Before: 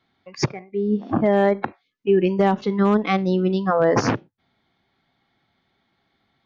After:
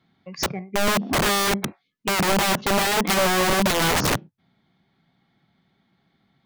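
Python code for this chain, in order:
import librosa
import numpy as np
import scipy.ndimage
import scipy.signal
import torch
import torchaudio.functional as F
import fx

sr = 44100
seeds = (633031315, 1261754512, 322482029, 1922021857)

p1 = fx.peak_eq(x, sr, hz=170.0, db=11.5, octaves=0.98)
p2 = fx.rider(p1, sr, range_db=3, speed_s=2.0)
p3 = p1 + (p2 * librosa.db_to_amplitude(0.5))
p4 = (np.mod(10.0 ** (7.5 / 20.0) * p3 + 1.0, 2.0) - 1.0) / 10.0 ** (7.5 / 20.0)
y = p4 * librosa.db_to_amplitude(-8.0)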